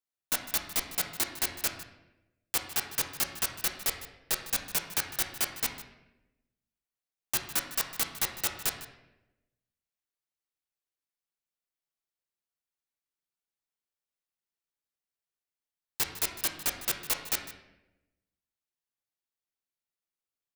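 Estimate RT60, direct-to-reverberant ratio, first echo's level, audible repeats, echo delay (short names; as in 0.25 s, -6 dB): 0.95 s, 3.0 dB, -16.0 dB, 1, 0.154 s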